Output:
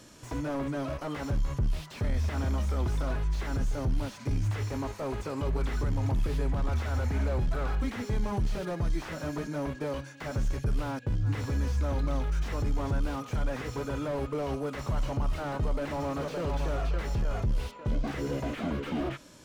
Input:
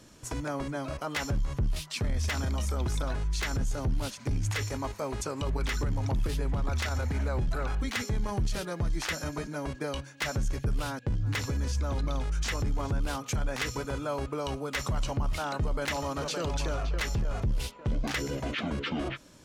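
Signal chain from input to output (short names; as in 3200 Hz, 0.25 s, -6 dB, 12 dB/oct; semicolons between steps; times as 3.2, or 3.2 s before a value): harmonic-percussive split percussive -6 dB; low shelf 170 Hz -4 dB; slew limiter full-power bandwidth 11 Hz; gain +5 dB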